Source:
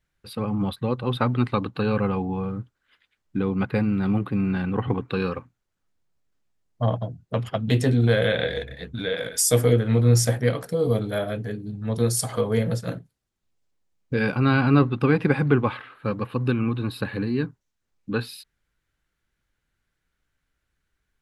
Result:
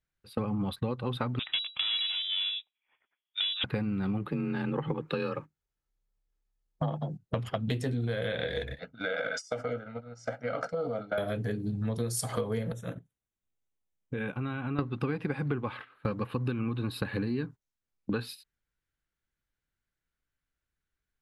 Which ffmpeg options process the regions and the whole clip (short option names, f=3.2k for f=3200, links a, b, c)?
-filter_complex "[0:a]asettb=1/sr,asplit=3[a][b][c];[a]atrim=end=1.394[d];[b]atrim=start=1.39:end=3.64,asetpts=PTS-STARTPTS,afade=t=in:d=0.004:c=qsin,afade=t=out:st=2.246:d=0.004:c=qsin,highpass=f=550:t=q:w=4.6,aeval=exprs='clip(val(0),-1,0.0355)':c=same,lowpass=f=3.3k:t=q:w=0.5098,lowpass=f=3.3k:t=q:w=0.6013,lowpass=f=3.3k:t=q:w=0.9,lowpass=f=3.3k:t=q:w=2.563,afreqshift=-3900[e];[c]atrim=start=3.636[f];[d][e]acrossfade=d=0.004:c1=hsin:c2=qsin[g];[g][f]acrossfade=d=0.004:c1=qsin:c2=hsin,asettb=1/sr,asplit=3[h][i][j];[h]atrim=end=4.264[k];[i]atrim=start=4.26:end=7.22,asetpts=PTS-STARTPTS,afade=t=in:d=0.004:c=qsin,afade=t=out:st=2.956:d=0.004:c=qsin,aecho=1:1:2.4:0.32,atrim=end_sample=130536,afreqshift=33[l];[j]atrim=start=7.216[m];[k][l]acrossfade=d=0.004:c1=hsin:c2=qsin[n];[n][m]acrossfade=d=0.004:c1=qsin:c2=hsin,asettb=1/sr,asplit=3[o][p][q];[o]atrim=end=8.794[r];[p]atrim=start=8.79:end=11.18,asetpts=PTS-STARTPTS,afade=t=in:d=0.004:c=qsin,afade=t=out:st=2.386:d=0.004:c=qsin,aecho=1:1:1.4:0.83,atrim=end_sample=105399,acompressor=threshold=-30dB:ratio=6:attack=3.2:release=140:knee=1:detection=peak,highpass=250,equalizer=f=290:t=q:w=4:g=6,equalizer=f=620:t=q:w=4:g=5,equalizer=f=1.3k:t=q:w=4:g=10,equalizer=f=3.6k:t=q:w=4:g=-8,lowpass=f=5.7k:w=0.5412,lowpass=f=5.7k:w=1.3066[s];[q]atrim=start=11.176[t];[r][s]acrossfade=d=0.004:c1=hsin:c2=qsin[u];[u][t]acrossfade=d=0.004:c1=qsin:c2=hsin,asettb=1/sr,asplit=3[v][w][x];[v]atrim=end=12.724[y];[w]atrim=start=12.72:end=14.79,asetpts=PTS-STARTPTS,afade=t=in:d=0.004:c=qsin,afade=t=out:st=2.066:d=0.004:c=qsin,acompressor=threshold=-33dB:ratio=6:attack=3.2:release=140:knee=1:detection=peak,asuperstop=centerf=4700:order=12:qfactor=2.8[z];[x]atrim=start=14.786[aa];[y][z]acrossfade=d=0.004:c1=hsin:c2=qsin[ab];[ab][aa]acrossfade=d=0.004:c1=qsin:c2=hsin,agate=range=-15dB:threshold=-36dB:ratio=16:detection=peak,acompressor=threshold=-32dB:ratio=10,volume=4dB"